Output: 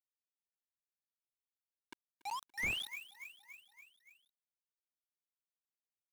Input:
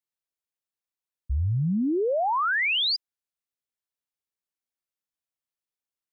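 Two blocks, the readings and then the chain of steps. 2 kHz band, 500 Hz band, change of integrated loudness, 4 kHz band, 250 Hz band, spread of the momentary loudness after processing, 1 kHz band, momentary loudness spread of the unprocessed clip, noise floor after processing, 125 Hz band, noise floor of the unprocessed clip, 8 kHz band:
-13.5 dB, -33.5 dB, -16.0 dB, -18.0 dB, -31.5 dB, 20 LU, -18.5 dB, 8 LU, under -85 dBFS, -32.0 dB, under -85 dBFS, n/a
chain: HPF 190 Hz 24 dB/oct; high shelf 2100 Hz +7.5 dB; limiter -22 dBFS, peak gain reduction 7 dB; vowel filter u; notch comb 290 Hz; band-pass sweep 3700 Hz -> 640 Hz, 1.83–5.33; companded quantiser 4-bit; on a send: feedback echo 0.285 s, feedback 59%, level -19 dB; on the sum: slew limiter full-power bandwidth 13 Hz; gain +11.5 dB

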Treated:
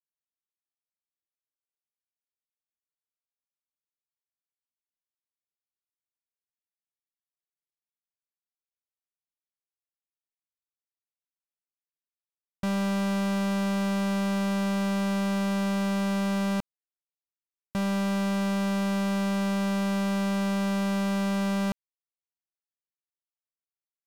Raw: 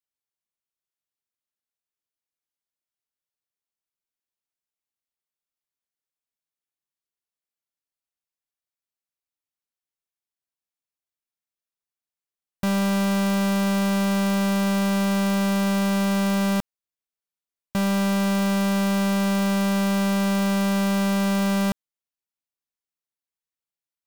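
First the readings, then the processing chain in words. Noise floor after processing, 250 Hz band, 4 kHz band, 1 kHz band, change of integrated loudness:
under -85 dBFS, -5.0 dB, -6.5 dB, -5.0 dB, -5.0 dB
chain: LPF 2200 Hz 12 dB/oct; sample leveller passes 5; gain -5.5 dB

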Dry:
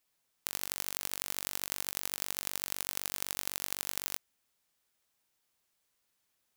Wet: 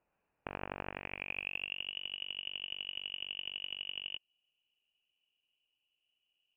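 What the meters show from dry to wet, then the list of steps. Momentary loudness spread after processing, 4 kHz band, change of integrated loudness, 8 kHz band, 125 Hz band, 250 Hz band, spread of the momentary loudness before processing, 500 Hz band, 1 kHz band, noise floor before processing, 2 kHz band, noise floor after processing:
5 LU, +3.5 dB, -4.5 dB, under -40 dB, -0.5 dB, -0.5 dB, 2 LU, +0.5 dB, -2.5 dB, -79 dBFS, +2.5 dB, -85 dBFS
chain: band shelf 1400 Hz -14.5 dB 1.3 oct; band-pass sweep 1700 Hz -> 280 Hz, 0.84–1.96; inverted band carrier 3200 Hz; gain +17 dB

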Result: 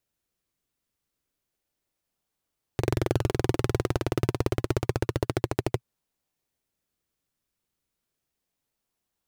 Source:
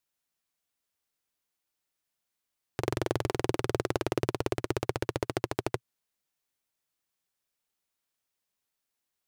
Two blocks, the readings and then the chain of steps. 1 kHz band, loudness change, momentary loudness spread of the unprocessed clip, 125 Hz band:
+1.0 dB, +4.0 dB, 5 LU, +8.0 dB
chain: low shelf 190 Hz +7.5 dB; in parallel at -8.5 dB: decimation with a swept rate 36×, swing 100% 0.3 Hz

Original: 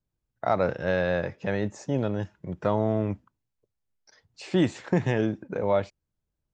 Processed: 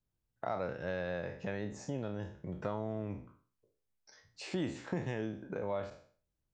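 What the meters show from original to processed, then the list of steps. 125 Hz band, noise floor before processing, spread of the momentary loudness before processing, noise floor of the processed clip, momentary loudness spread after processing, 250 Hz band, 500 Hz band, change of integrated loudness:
-11.5 dB, -83 dBFS, 8 LU, -85 dBFS, 6 LU, -11.5 dB, -12.0 dB, -12.0 dB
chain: spectral trails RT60 0.41 s; compressor 2:1, threshold -35 dBFS, peak gain reduction 10 dB; gain -4.5 dB

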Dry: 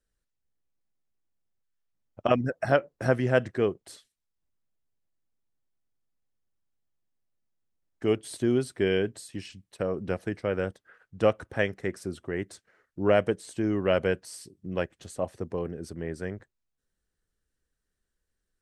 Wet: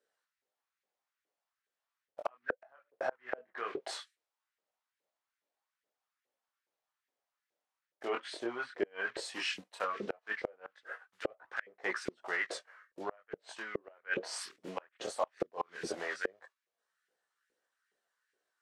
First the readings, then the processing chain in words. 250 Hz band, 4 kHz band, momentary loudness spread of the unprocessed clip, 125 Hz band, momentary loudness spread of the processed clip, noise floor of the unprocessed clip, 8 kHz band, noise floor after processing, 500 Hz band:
-16.5 dB, -2.5 dB, 13 LU, -26.5 dB, 8 LU, -83 dBFS, -3.0 dB, under -85 dBFS, -13.0 dB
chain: block floating point 5-bit; treble ducked by the level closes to 2000 Hz, closed at -23.5 dBFS; gate -54 dBFS, range -7 dB; high shelf 6500 Hz -11 dB; reverse; compressor 16:1, threshold -33 dBFS, peak gain reduction 17.5 dB; reverse; chorus voices 2, 0.17 Hz, delay 21 ms, depth 5 ms; LFO high-pass saw up 2.4 Hz 420–1900 Hz; flipped gate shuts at -34 dBFS, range -33 dB; gain +14 dB

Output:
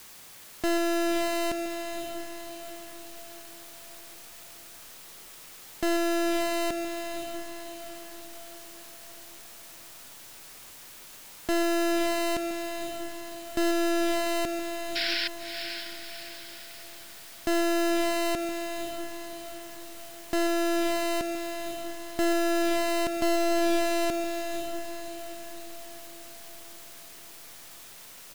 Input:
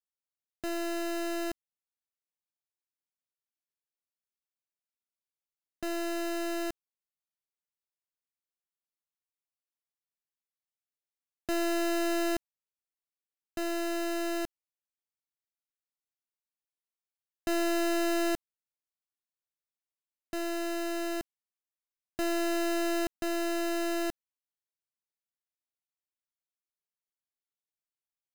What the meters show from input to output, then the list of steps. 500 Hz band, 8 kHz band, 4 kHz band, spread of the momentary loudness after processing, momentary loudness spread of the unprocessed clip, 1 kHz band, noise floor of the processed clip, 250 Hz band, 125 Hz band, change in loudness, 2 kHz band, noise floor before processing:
+6.0 dB, +6.5 dB, +8.0 dB, 18 LU, 11 LU, +7.0 dB, -47 dBFS, +4.5 dB, n/a, +3.0 dB, +5.5 dB, under -85 dBFS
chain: in parallel at -8 dB: requantised 8-bit, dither triangular; on the sum: speakerphone echo 0.14 s, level -8 dB; limiter -31.5 dBFS, peak gain reduction 8 dB; painted sound noise, 14.95–15.28, 1400–5500 Hz -37 dBFS; on a send: diffused feedback echo 0.563 s, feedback 50%, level -7 dB; on the sum: Doppler distortion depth 0.16 ms; gain +8 dB

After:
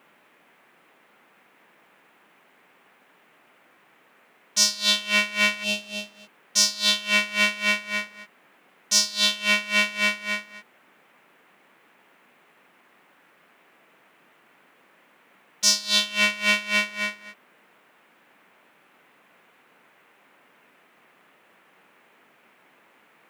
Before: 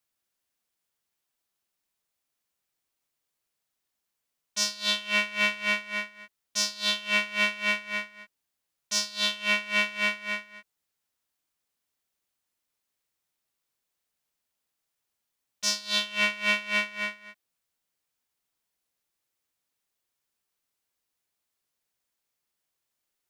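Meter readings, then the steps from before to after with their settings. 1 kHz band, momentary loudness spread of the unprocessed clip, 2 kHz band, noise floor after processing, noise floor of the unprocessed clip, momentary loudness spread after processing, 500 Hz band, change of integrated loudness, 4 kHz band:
+3.0 dB, 9 LU, +3.5 dB, -60 dBFS, -83 dBFS, 10 LU, +3.0 dB, +5.0 dB, +6.5 dB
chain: tone controls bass +3 dB, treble +7 dB; spectral gain 5.64–6.54, 850–2500 Hz -19 dB; band noise 170–2500 Hz -62 dBFS; gain +3 dB

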